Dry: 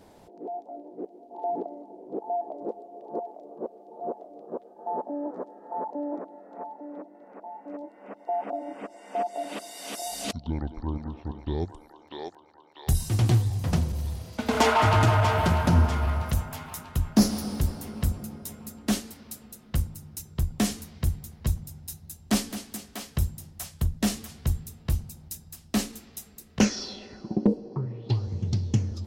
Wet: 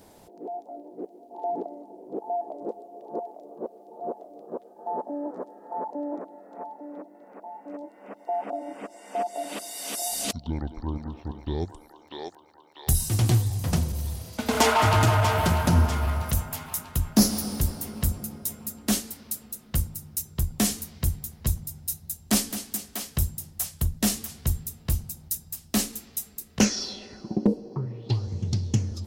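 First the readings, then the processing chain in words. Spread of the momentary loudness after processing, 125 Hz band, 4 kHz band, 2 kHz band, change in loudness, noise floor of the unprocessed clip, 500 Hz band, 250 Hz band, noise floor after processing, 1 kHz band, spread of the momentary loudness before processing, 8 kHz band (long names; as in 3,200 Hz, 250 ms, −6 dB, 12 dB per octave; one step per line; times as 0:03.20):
18 LU, 0.0 dB, +3.0 dB, +1.0 dB, +1.0 dB, −53 dBFS, 0.0 dB, 0.0 dB, −53 dBFS, 0.0 dB, 18 LU, +7.0 dB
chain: high-shelf EQ 6,500 Hz +11.5 dB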